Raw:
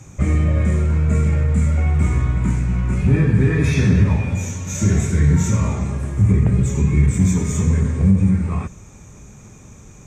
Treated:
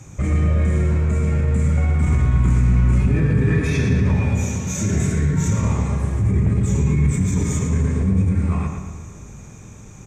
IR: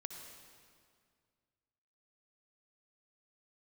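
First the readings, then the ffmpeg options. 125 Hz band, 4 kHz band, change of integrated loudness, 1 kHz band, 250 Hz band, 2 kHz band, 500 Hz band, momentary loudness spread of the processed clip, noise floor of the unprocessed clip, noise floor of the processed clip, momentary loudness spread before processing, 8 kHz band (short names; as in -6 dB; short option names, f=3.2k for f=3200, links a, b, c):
-1.5 dB, -1.5 dB, -1.5 dB, 0.0 dB, -2.0 dB, -1.0 dB, -0.5 dB, 5 LU, -42 dBFS, -40 dBFS, 6 LU, -1.0 dB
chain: -filter_complex "[0:a]asplit=2[a][b];[1:a]atrim=start_sample=2205,adelay=136[c];[b][c]afir=irnorm=-1:irlink=0,volume=-10.5dB[d];[a][d]amix=inputs=2:normalize=0,alimiter=limit=-13dB:level=0:latency=1:release=26,asplit=2[e][f];[f]adelay=115,lowpass=f=3.8k:p=1,volume=-4.5dB,asplit=2[g][h];[h]adelay=115,lowpass=f=3.8k:p=1,volume=0.49,asplit=2[i][j];[j]adelay=115,lowpass=f=3.8k:p=1,volume=0.49,asplit=2[k][l];[l]adelay=115,lowpass=f=3.8k:p=1,volume=0.49,asplit=2[m][n];[n]adelay=115,lowpass=f=3.8k:p=1,volume=0.49,asplit=2[o][p];[p]adelay=115,lowpass=f=3.8k:p=1,volume=0.49[q];[g][i][k][m][o][q]amix=inputs=6:normalize=0[r];[e][r]amix=inputs=2:normalize=0"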